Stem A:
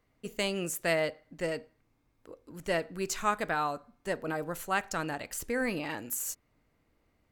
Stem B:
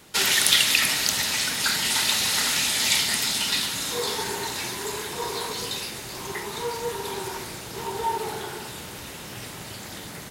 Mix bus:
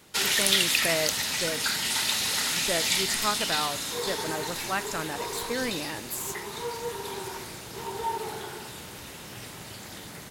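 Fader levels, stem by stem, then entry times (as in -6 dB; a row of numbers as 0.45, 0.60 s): 0.0, -4.0 dB; 0.00, 0.00 s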